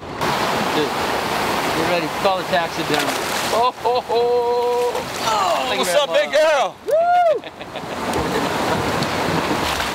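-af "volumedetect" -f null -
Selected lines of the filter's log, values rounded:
mean_volume: -19.2 dB
max_volume: -3.3 dB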